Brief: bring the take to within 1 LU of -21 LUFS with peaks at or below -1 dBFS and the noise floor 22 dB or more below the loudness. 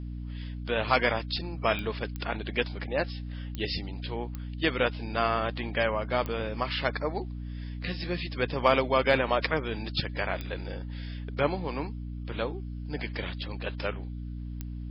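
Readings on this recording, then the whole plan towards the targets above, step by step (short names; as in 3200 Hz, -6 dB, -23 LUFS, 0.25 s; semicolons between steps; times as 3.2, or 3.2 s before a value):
clicks 7; hum 60 Hz; harmonics up to 300 Hz; hum level -34 dBFS; loudness -30.5 LUFS; peak -9.0 dBFS; loudness target -21.0 LUFS
-> de-click; de-hum 60 Hz, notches 5; gain +9.5 dB; limiter -1 dBFS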